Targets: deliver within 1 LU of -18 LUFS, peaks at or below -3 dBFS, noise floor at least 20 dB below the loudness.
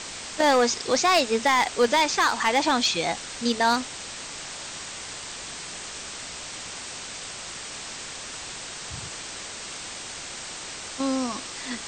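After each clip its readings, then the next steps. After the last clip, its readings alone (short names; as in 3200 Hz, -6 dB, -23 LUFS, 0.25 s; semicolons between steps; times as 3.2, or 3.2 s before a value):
clipped 0.3%; flat tops at -13.5 dBFS; noise floor -38 dBFS; noise floor target -47 dBFS; loudness -26.5 LUFS; peak -13.5 dBFS; loudness target -18.0 LUFS
-> clip repair -13.5 dBFS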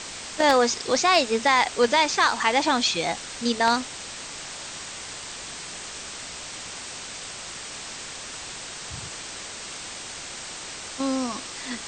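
clipped 0.0%; noise floor -38 dBFS; noise floor target -46 dBFS
-> noise print and reduce 8 dB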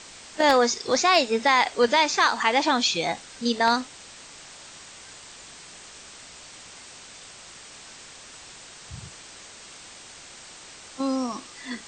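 noise floor -46 dBFS; loudness -22.0 LUFS; peak -5.0 dBFS; loudness target -18.0 LUFS
-> gain +4 dB; limiter -3 dBFS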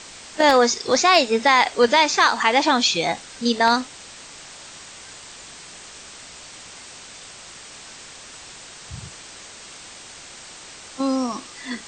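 loudness -18.0 LUFS; peak -3.0 dBFS; noise floor -42 dBFS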